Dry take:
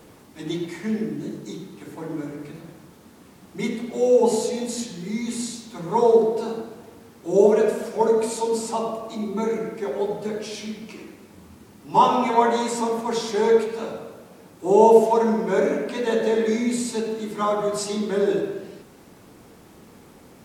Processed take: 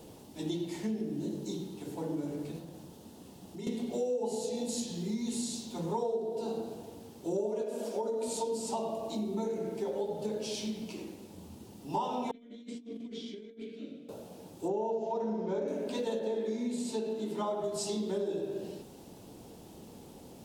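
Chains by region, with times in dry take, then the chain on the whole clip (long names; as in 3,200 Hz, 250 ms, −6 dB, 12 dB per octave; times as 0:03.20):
0:02.58–0:03.67: downward compressor 3 to 1, threshold −40 dBFS + notch filter 2,300 Hz, Q 20
0:07.63–0:08.28: downward compressor 3 to 1, threshold −20 dBFS + linear-phase brick-wall high-pass 190 Hz
0:12.31–0:14.09: formant filter i + compressor whose output falls as the input rises −41 dBFS, ratio −0.5
0:14.68–0:15.68: low-pass filter 2,900 Hz 6 dB per octave + downward compressor 2 to 1, threshold −16 dBFS + bad sample-rate conversion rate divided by 3×, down none, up filtered
0:16.19–0:17.64: high-pass filter 190 Hz + bass and treble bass +2 dB, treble −6 dB
whole clip: flat-topped bell 1,600 Hz −10 dB 1.3 octaves; downward compressor 6 to 1, threshold −29 dBFS; level −2 dB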